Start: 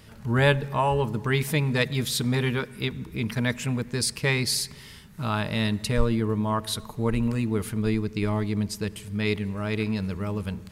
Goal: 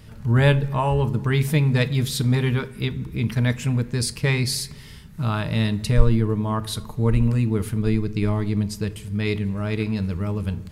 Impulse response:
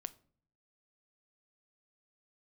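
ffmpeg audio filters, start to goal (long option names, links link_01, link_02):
-filter_complex "[0:a]lowshelf=frequency=180:gain=10[link_01];[1:a]atrim=start_sample=2205,atrim=end_sample=4410[link_02];[link_01][link_02]afir=irnorm=-1:irlink=0,volume=3dB"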